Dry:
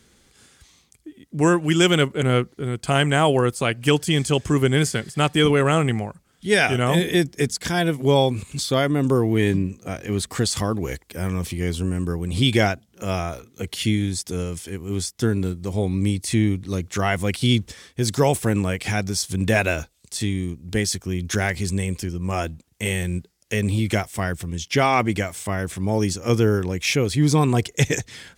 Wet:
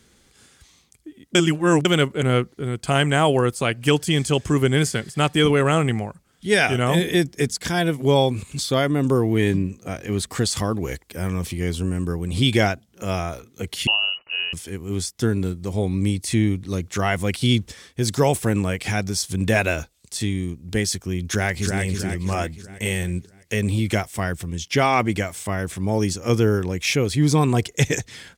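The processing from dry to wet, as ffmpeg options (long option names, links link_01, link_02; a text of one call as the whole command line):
ffmpeg -i in.wav -filter_complex "[0:a]asettb=1/sr,asplit=3[link_01][link_02][link_03];[link_01]atrim=end=13.874[link_04];[link_02]atrim=start=13.87:end=14.53,asetpts=PTS-STARTPTS,afade=type=in:duration=0.004:curve=qsin,afade=type=out:start_time=0.656:duration=0.004:curve=qsin,lowpass=frequency=2600:width_type=q:width=0.5098,lowpass=frequency=2600:width_type=q:width=0.6013,lowpass=frequency=2600:width_type=q:width=0.9,lowpass=frequency=2600:width_type=q:width=2.563,afreqshift=-3000[link_05];[link_03]atrim=start=14.526[link_06];[link_04][link_05]acrossfade=duration=0.004:curve1=hsin:curve2=qsin[link_07];[link_07][link_06]acrossfade=duration=0.004:curve1=qsin:curve2=hsin,asplit=2[link_08][link_09];[link_09]afade=type=in:start_time=21.28:duration=0.01,afade=type=out:start_time=21.82:duration=0.01,aecho=0:1:320|640|960|1280|1600|1920:0.595662|0.297831|0.148916|0.0744578|0.0372289|0.0186144[link_10];[link_08][link_10]amix=inputs=2:normalize=0,asplit=3[link_11][link_12][link_13];[link_11]atrim=end=1.352[link_14];[link_12]atrim=start=1.348:end=1.852,asetpts=PTS-STARTPTS,areverse[link_15];[link_13]atrim=start=1.848[link_16];[link_14][link_15]acrossfade=duration=0.004:curve1=hsin:curve2=hsin[link_17];[link_17][link_16]acrossfade=duration=0.004:curve1=hsin:curve2=hsin" out.wav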